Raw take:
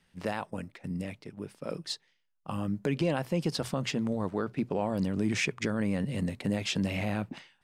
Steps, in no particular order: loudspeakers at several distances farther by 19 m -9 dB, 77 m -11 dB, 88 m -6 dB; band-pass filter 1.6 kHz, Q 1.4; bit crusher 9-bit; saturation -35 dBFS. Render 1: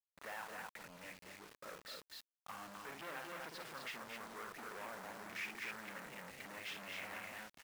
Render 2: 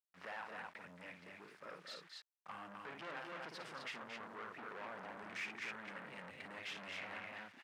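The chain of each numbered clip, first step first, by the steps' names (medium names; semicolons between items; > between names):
loudspeakers at several distances > saturation > band-pass filter > bit crusher; loudspeakers at several distances > bit crusher > saturation > band-pass filter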